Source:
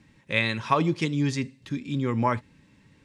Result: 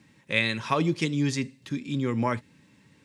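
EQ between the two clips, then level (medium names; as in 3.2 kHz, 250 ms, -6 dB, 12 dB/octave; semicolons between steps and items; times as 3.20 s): high-pass 110 Hz; dynamic bell 960 Hz, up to -5 dB, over -37 dBFS, Q 1.4; treble shelf 6.7 kHz +6 dB; 0.0 dB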